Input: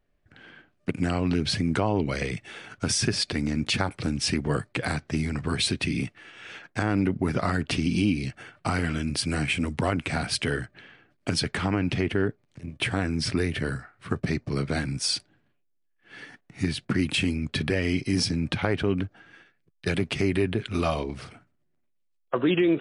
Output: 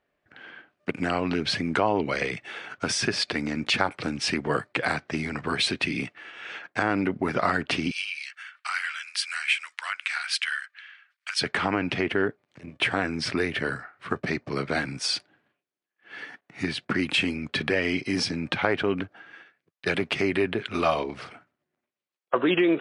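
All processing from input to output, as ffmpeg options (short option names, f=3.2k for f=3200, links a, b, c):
-filter_complex "[0:a]asettb=1/sr,asplit=3[a][b][c];[a]atrim=end=7.914[d];[b]atrim=start=7.91:end=11.41,asetpts=PTS-STARTPTS,afade=t=in:d=0.004:c=qsin,afade=t=out:st=3.496:d=0.004:c=qsin,highpass=f=1.4k:w=0.5412,highpass=f=1.4k:w=1.3066,highshelf=f=9.2k:g=5.5[e];[c]atrim=start=11.406[f];[d][e]acrossfade=d=0.004:c1=hsin:c2=qsin[g];[g][f]acrossfade=d=0.004:c1=qsin:c2=hsin,highpass=f=750:p=1,aemphasis=mode=reproduction:type=75fm,acontrast=82"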